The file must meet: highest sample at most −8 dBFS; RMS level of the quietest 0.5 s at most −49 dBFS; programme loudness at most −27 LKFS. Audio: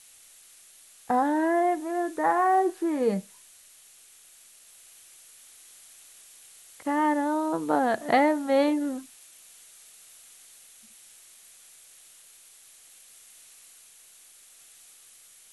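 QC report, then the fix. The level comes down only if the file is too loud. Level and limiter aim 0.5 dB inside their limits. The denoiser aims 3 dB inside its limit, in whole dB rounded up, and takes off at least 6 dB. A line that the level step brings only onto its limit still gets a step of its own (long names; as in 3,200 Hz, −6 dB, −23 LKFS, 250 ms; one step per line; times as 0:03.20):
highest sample −9.5 dBFS: in spec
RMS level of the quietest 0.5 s −54 dBFS: in spec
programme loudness −25.5 LKFS: out of spec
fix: level −2 dB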